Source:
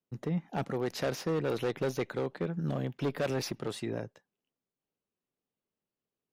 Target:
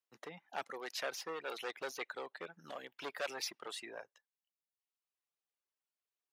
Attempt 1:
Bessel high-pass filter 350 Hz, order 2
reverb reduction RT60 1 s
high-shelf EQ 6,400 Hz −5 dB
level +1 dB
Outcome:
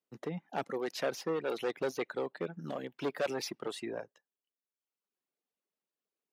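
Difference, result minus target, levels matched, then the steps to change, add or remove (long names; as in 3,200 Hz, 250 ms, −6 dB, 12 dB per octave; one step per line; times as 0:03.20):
250 Hz band +8.5 dB
change: Bessel high-pass filter 1,100 Hz, order 2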